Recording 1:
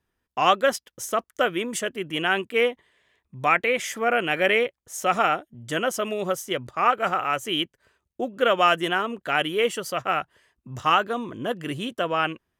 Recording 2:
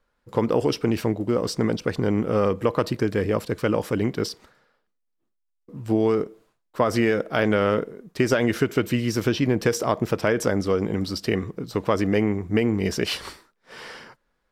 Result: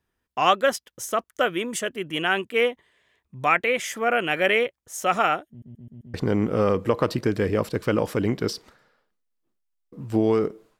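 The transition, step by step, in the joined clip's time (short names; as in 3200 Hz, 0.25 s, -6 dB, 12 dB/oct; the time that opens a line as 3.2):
recording 1
5.49 stutter in place 0.13 s, 5 plays
6.14 switch to recording 2 from 1.9 s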